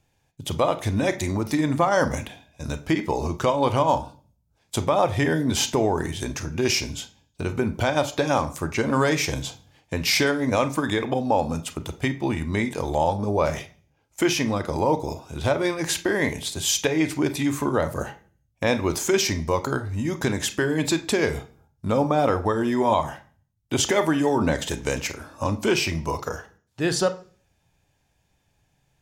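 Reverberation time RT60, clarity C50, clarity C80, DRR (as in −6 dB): 0.45 s, 15.0 dB, 20.0 dB, 9.5 dB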